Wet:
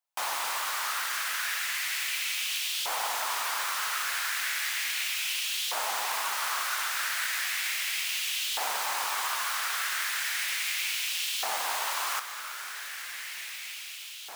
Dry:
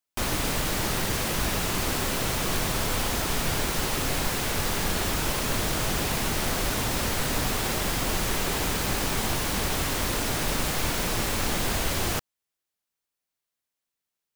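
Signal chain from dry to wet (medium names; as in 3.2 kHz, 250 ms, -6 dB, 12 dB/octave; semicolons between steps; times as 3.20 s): echo that smears into a reverb 1719 ms, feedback 62%, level -9.5 dB; LFO high-pass saw up 0.35 Hz 750–3200 Hz; dynamic bell 290 Hz, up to -6 dB, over -48 dBFS, Q 0.81; trim -3.5 dB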